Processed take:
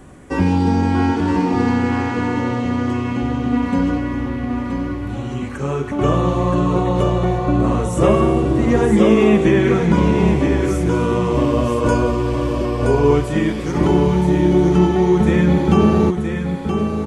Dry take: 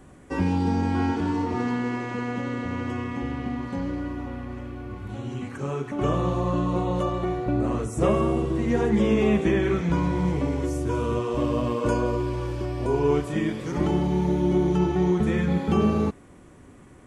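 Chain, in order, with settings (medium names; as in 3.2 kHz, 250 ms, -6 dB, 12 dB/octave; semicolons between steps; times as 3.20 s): 3.52–3.98 s: comb 4.2 ms, depth 93%; on a send: delay 974 ms -6 dB; on the sum: trim +7.5 dB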